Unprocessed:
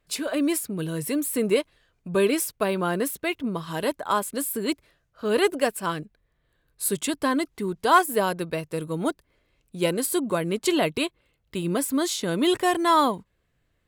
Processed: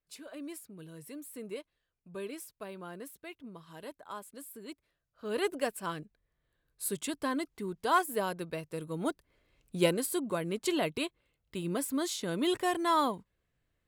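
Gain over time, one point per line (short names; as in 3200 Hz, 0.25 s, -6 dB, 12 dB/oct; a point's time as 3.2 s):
4.71 s -19 dB
5.52 s -9 dB
8.85 s -9 dB
9.76 s 0 dB
10.06 s -8 dB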